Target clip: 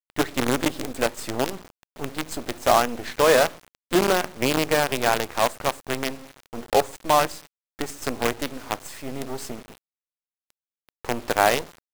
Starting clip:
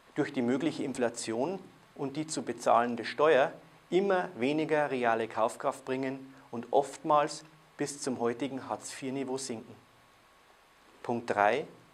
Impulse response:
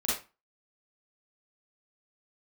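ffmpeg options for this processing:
-af "acrusher=bits=5:dc=4:mix=0:aa=0.000001,volume=6.5dB"

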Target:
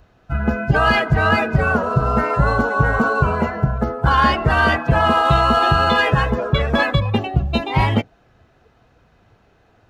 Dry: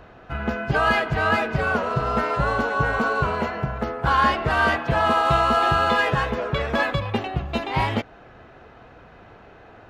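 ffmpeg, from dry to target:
ffmpeg -i in.wav -filter_complex "[0:a]afftdn=noise_reduction=15:noise_floor=-30,aeval=exprs='0.447*(cos(1*acos(clip(val(0)/0.447,-1,1)))-cos(1*PI/2))+0.02*(cos(3*acos(clip(val(0)/0.447,-1,1)))-cos(3*PI/2))':channel_layout=same,bass=frequency=250:gain=6,treble=frequency=4000:gain=14,asplit=2[link_01][link_02];[link_02]alimiter=limit=-11dB:level=0:latency=1,volume=1dB[link_03];[link_01][link_03]amix=inputs=2:normalize=0,volume=-1.5dB" out.wav

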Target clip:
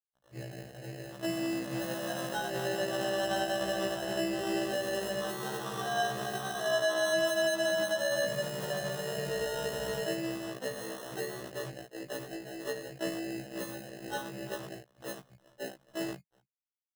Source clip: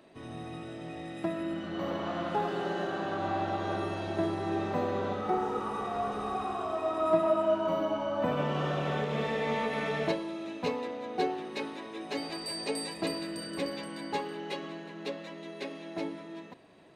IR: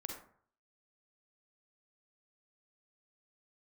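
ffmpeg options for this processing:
-filter_complex "[0:a]bandreject=frequency=50:width_type=h:width=6,bandreject=frequency=100:width_type=h:width=6,bandreject=frequency=150:width_type=h:width=6,bandreject=frequency=200:width_type=h:width=6,asplit=2[link_01][link_02];[link_02]aecho=0:1:202:0.075[link_03];[link_01][link_03]amix=inputs=2:normalize=0,acrusher=bits=5:mix=0:aa=0.000001,highpass=frequency=110:width=0.5412,highpass=frequency=110:width=1.3066,equalizer=frequency=150:width_type=q:width=4:gain=8,equalizer=frequency=260:width_type=q:width=4:gain=-5,equalizer=frequency=590:width_type=q:width=4:gain=9,equalizer=frequency=920:width_type=q:width=4:gain=-6,lowpass=frequency=2900:width=0.5412,lowpass=frequency=2900:width=1.3066,acrossover=split=250[link_04][link_05];[link_04]adelay=30[link_06];[link_06][link_05]amix=inputs=2:normalize=0,afwtdn=0.0178,lowshelf=frequency=230:gain=8.5,alimiter=limit=-22dB:level=0:latency=1:release=133,acrusher=samples=19:mix=1:aa=0.000001,afftfilt=real='re*1.73*eq(mod(b,3),0)':imag='im*1.73*eq(mod(b,3),0)':win_size=2048:overlap=0.75"

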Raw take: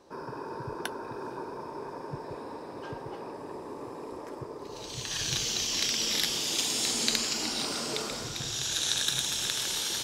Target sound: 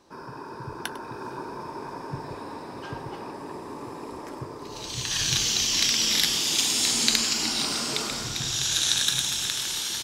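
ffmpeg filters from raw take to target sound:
ffmpeg -i in.wav -af "equalizer=frequency=500:width=1.4:gain=-7,bandreject=frequency=50.13:width_type=h:width=4,bandreject=frequency=100.26:width_type=h:width=4,bandreject=frequency=150.39:width_type=h:width=4,bandreject=frequency=200.52:width_type=h:width=4,bandreject=frequency=250.65:width_type=h:width=4,bandreject=frequency=300.78:width_type=h:width=4,bandreject=frequency=350.91:width_type=h:width=4,bandreject=frequency=401.04:width_type=h:width=4,bandreject=frequency=451.17:width_type=h:width=4,bandreject=frequency=501.3:width_type=h:width=4,bandreject=frequency=551.43:width_type=h:width=4,bandreject=frequency=601.56:width_type=h:width=4,bandreject=frequency=651.69:width_type=h:width=4,bandreject=frequency=701.82:width_type=h:width=4,bandreject=frequency=751.95:width_type=h:width=4,bandreject=frequency=802.08:width_type=h:width=4,bandreject=frequency=852.21:width_type=h:width=4,bandreject=frequency=902.34:width_type=h:width=4,bandreject=frequency=952.47:width_type=h:width=4,bandreject=frequency=1002.6:width_type=h:width=4,bandreject=frequency=1052.73:width_type=h:width=4,bandreject=frequency=1102.86:width_type=h:width=4,bandreject=frequency=1152.99:width_type=h:width=4,bandreject=frequency=1203.12:width_type=h:width=4,bandreject=frequency=1253.25:width_type=h:width=4,bandreject=frequency=1303.38:width_type=h:width=4,bandreject=frequency=1353.51:width_type=h:width=4,bandreject=frequency=1403.64:width_type=h:width=4,bandreject=frequency=1453.77:width_type=h:width=4,bandreject=frequency=1503.9:width_type=h:width=4,bandreject=frequency=1554.03:width_type=h:width=4,bandreject=frequency=1604.16:width_type=h:width=4,bandreject=frequency=1654.29:width_type=h:width=4,bandreject=frequency=1704.42:width_type=h:width=4,bandreject=frequency=1754.55:width_type=h:width=4,bandreject=frequency=1804.68:width_type=h:width=4,bandreject=frequency=1854.81:width_type=h:width=4,bandreject=frequency=1904.94:width_type=h:width=4,dynaudnorm=framelen=130:gausssize=17:maxgain=4dB,aecho=1:1:101:0.158,volume=2.5dB" out.wav

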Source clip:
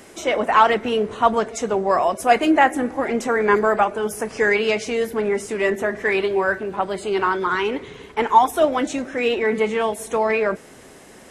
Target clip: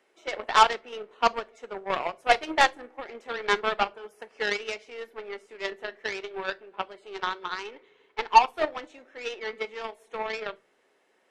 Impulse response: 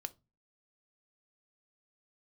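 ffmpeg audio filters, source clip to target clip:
-filter_complex "[0:a]acrossover=split=300 3700:gain=0.0794 1 0.126[link_01][link_02][link_03];[link_01][link_02][link_03]amix=inputs=3:normalize=0,aeval=exprs='0.794*(cos(1*acos(clip(val(0)/0.794,-1,1)))-cos(1*PI/2))+0.0355*(cos(2*acos(clip(val(0)/0.794,-1,1)))-cos(2*PI/2))+0.1*(cos(3*acos(clip(val(0)/0.794,-1,1)))-cos(3*PI/2))+0.0562*(cos(7*acos(clip(val(0)/0.794,-1,1)))-cos(7*PI/2))':channel_layout=same,asplit=2[link_04][link_05];[1:a]atrim=start_sample=2205,highshelf=frequency=2300:gain=12[link_06];[link_05][link_06]afir=irnorm=-1:irlink=0,volume=0.5dB[link_07];[link_04][link_07]amix=inputs=2:normalize=0,volume=-8dB"

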